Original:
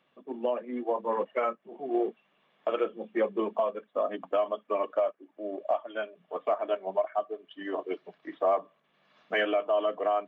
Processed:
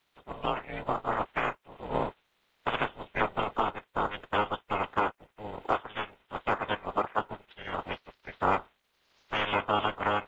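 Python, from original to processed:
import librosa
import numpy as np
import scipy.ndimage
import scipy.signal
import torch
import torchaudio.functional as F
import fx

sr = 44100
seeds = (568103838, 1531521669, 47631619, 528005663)

y = fx.spec_clip(x, sr, under_db=25)
y = fx.dynamic_eq(y, sr, hz=960.0, q=2.0, threshold_db=-41.0, ratio=4.0, max_db=5)
y = y * np.sin(2.0 * np.pi * 210.0 * np.arange(len(y)) / sr)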